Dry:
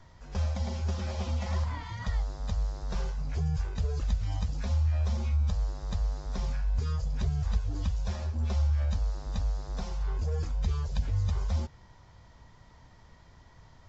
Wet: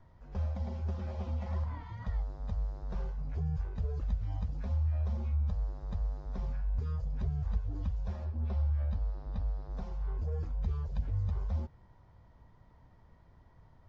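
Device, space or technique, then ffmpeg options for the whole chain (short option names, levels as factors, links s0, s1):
through cloth: -filter_complex "[0:a]lowpass=6300,highshelf=f=2100:g=-15.5,asettb=1/sr,asplit=3[s0][s1][s2];[s0]atrim=end=8.254[s3];[s1]atrim=start=8.25:end=9.71,asetpts=PTS-STARTPTS,afade=t=in:d=0.004:c=qsin,afade=t=out:st=1.456:d=0.004:c=qsin,lowpass=f=5400:w=0.5412,lowpass=f=5400:w=1.3066[s4];[s2]atrim=start=9.706[s5];[s3][s4]acrossfade=d=0.004:c1=hsin:c2=qsin[s6];[s6][s5]acrossfade=d=0.004:c1=qsin:c2=hsin,volume=0.631"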